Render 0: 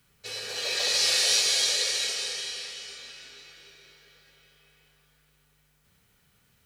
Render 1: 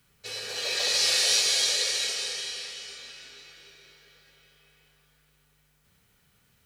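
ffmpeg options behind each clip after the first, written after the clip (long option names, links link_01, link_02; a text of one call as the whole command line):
ffmpeg -i in.wav -af anull out.wav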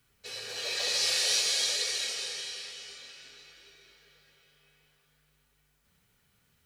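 ffmpeg -i in.wav -af "flanger=delay=2.6:depth=9.6:regen=-54:speed=0.53:shape=sinusoidal" out.wav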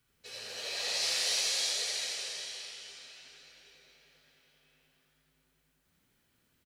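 ffmpeg -i in.wav -filter_complex "[0:a]asplit=7[link_01][link_02][link_03][link_04][link_05][link_06][link_07];[link_02]adelay=83,afreqshift=110,volume=-3dB[link_08];[link_03]adelay=166,afreqshift=220,volume=-9.2dB[link_09];[link_04]adelay=249,afreqshift=330,volume=-15.4dB[link_10];[link_05]adelay=332,afreqshift=440,volume=-21.6dB[link_11];[link_06]adelay=415,afreqshift=550,volume=-27.8dB[link_12];[link_07]adelay=498,afreqshift=660,volume=-34dB[link_13];[link_01][link_08][link_09][link_10][link_11][link_12][link_13]amix=inputs=7:normalize=0,volume=-5.5dB" out.wav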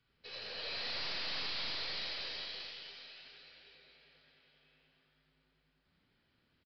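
ffmpeg -i in.wav -af "aeval=exprs='0.133*(cos(1*acos(clip(val(0)/0.133,-1,1)))-cos(1*PI/2))+0.00944*(cos(5*acos(clip(val(0)/0.133,-1,1)))-cos(5*PI/2))+0.0376*(cos(6*acos(clip(val(0)/0.133,-1,1)))-cos(6*PI/2))':channel_layout=same,aresample=11025,aeval=exprs='clip(val(0),-1,0.0237)':channel_layout=same,aresample=44100,volume=-3.5dB" out.wav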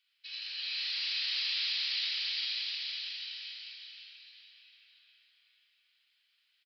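ffmpeg -i in.wav -af "highpass=frequency=2800:width_type=q:width=1.5,aecho=1:1:460|805|1064|1258|1403:0.631|0.398|0.251|0.158|0.1,volume=2.5dB" out.wav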